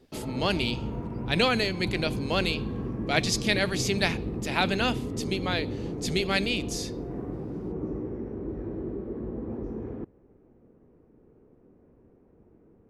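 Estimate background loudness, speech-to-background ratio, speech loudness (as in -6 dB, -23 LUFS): -34.5 LUFS, 6.5 dB, -28.0 LUFS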